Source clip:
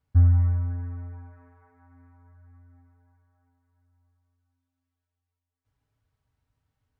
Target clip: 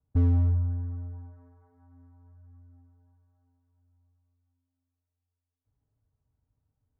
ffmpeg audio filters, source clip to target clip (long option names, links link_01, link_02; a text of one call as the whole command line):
ffmpeg -i in.wav -filter_complex "[0:a]acrossover=split=150[link_01][link_02];[link_01]asoftclip=type=hard:threshold=-21.5dB[link_03];[link_02]adynamicsmooth=sensitivity=1.5:basefreq=840[link_04];[link_03][link_04]amix=inputs=2:normalize=0" out.wav